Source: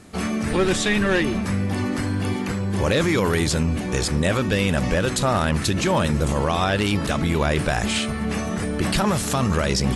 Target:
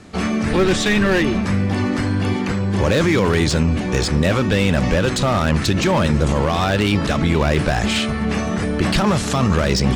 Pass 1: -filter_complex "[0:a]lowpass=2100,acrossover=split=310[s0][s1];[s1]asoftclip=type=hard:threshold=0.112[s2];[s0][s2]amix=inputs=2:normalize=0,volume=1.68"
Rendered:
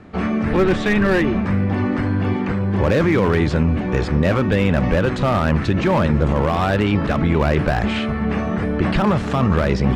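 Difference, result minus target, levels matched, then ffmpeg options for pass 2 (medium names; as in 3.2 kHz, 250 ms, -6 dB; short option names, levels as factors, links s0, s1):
8 kHz band -15.0 dB
-filter_complex "[0:a]lowpass=6400,acrossover=split=310[s0][s1];[s1]asoftclip=type=hard:threshold=0.112[s2];[s0][s2]amix=inputs=2:normalize=0,volume=1.68"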